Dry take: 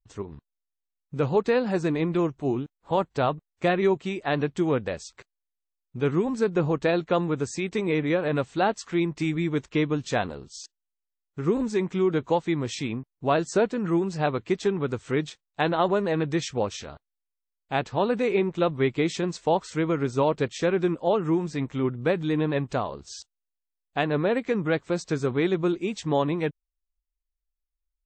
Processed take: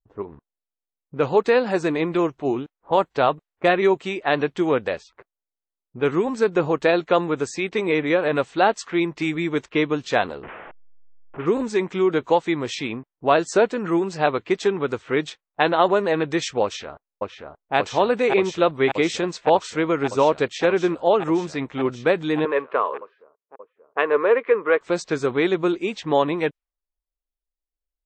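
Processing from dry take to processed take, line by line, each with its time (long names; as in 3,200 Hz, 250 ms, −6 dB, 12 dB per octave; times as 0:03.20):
0:10.43–0:11.46: linear delta modulator 16 kbit/s, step −33 dBFS
0:16.63–0:17.75: delay throw 580 ms, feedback 85%, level −2 dB
0:22.45–0:24.81: loudspeaker in its box 450–2,600 Hz, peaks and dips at 450 Hz +9 dB, 740 Hz −9 dB, 1,100 Hz +8 dB
whole clip: high-shelf EQ 4,900 Hz +9.5 dB; low-pass that shuts in the quiet parts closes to 580 Hz, open at −22 dBFS; bass and treble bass −11 dB, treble −9 dB; level +6 dB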